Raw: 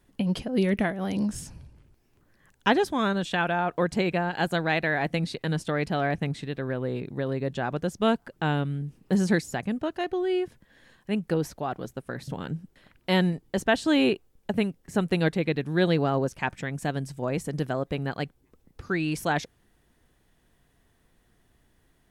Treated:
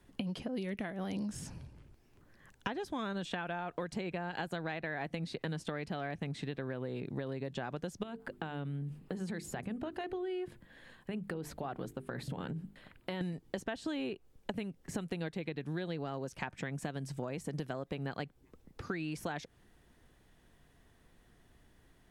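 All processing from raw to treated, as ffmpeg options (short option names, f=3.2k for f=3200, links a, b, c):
-filter_complex "[0:a]asettb=1/sr,asplit=3[a][b][c];[a]atrim=end=8.034[d];[b]atrim=start=8.03:end=13.21,asetpts=PTS-STARTPTS,afade=t=in:d=0.004:c=qsin,afade=t=out:st=5.176:d=0.004:c=qsin,equalizer=f=5.8k:w=3:g=-8,acompressor=threshold=-32dB:ratio=8:attack=3.2:release=140:knee=1:detection=peak,bandreject=f=50:t=h:w=6,bandreject=f=100:t=h:w=6,bandreject=f=150:t=h:w=6,bandreject=f=200:t=h:w=6,bandreject=f=250:t=h:w=6,bandreject=f=300:t=h:w=6,bandreject=f=350:t=h:w=6,bandreject=f=400:t=h:w=6,bandreject=f=450:t=h:w=6[e];[c]atrim=start=13.206[f];[d][e]acrossfade=d=0.004:c1=hsin:c2=qsin[g];[g][f]acrossfade=d=0.004:c1=qsin:c2=hsin,acrossover=split=95|2300[h][i][j];[h]acompressor=threshold=-55dB:ratio=4[k];[i]acompressor=threshold=-29dB:ratio=4[l];[j]acompressor=threshold=-42dB:ratio=4[m];[k][l][m]amix=inputs=3:normalize=0,highshelf=f=9.1k:g=-6,acompressor=threshold=-36dB:ratio=5,volume=1dB"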